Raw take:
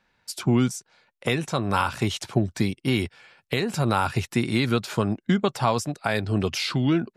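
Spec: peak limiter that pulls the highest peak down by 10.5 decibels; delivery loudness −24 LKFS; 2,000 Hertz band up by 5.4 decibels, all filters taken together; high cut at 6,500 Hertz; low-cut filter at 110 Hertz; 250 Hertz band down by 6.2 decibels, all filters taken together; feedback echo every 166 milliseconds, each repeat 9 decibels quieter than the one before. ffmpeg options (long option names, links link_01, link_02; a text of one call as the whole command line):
ffmpeg -i in.wav -af "highpass=110,lowpass=6500,equalizer=frequency=250:width_type=o:gain=-8,equalizer=frequency=2000:width_type=o:gain=7,alimiter=limit=-17dB:level=0:latency=1,aecho=1:1:166|332|498|664:0.355|0.124|0.0435|0.0152,volume=5.5dB" out.wav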